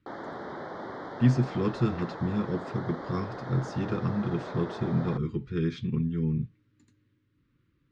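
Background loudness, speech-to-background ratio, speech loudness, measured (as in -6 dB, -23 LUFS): -39.5 LUFS, 9.5 dB, -30.0 LUFS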